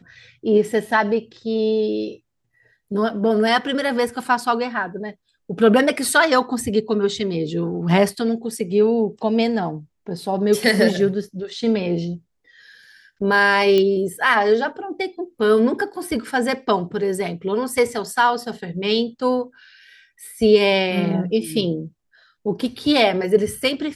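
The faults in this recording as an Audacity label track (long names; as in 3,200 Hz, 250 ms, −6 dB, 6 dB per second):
13.780000	13.780000	click −8 dBFS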